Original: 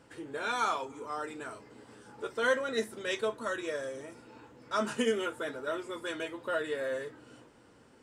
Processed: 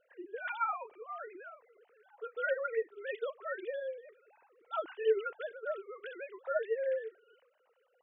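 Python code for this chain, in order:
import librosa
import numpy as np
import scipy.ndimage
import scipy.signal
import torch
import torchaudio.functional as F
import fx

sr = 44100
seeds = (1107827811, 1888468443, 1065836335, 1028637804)

y = fx.sine_speech(x, sr)
y = F.gain(torch.from_numpy(y), -3.0).numpy()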